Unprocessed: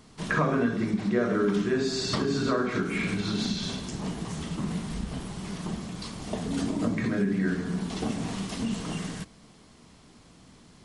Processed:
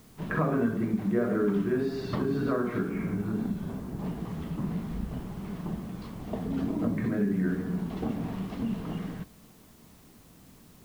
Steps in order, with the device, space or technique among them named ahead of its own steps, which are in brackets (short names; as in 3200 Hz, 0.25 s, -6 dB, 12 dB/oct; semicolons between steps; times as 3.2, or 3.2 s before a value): 2.89–3.99 LPF 1600 Hz 12 dB/oct; cassette deck with a dirty head (tape spacing loss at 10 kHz 37 dB; wow and flutter; white noise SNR 30 dB)